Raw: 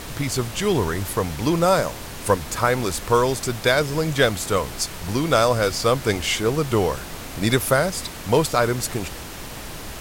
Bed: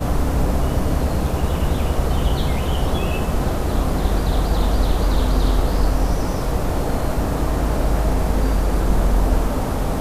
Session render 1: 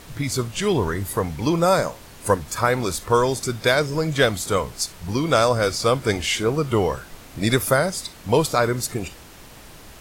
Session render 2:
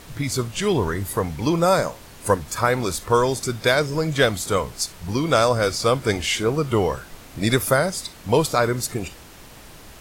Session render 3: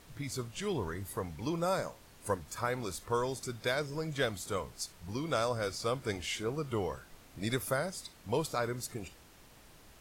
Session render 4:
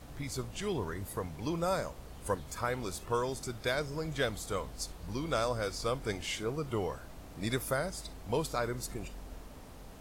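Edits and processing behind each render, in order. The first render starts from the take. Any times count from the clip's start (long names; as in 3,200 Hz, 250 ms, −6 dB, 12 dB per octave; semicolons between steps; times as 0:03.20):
noise reduction from a noise print 9 dB
no processing that can be heard
level −14 dB
mix in bed −29.5 dB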